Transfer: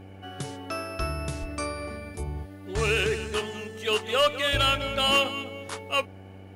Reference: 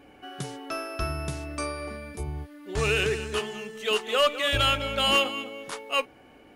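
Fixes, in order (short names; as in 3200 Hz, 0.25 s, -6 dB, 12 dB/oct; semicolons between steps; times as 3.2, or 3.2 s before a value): de-hum 95.7 Hz, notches 9; 1.4–1.52 HPF 140 Hz 24 dB/oct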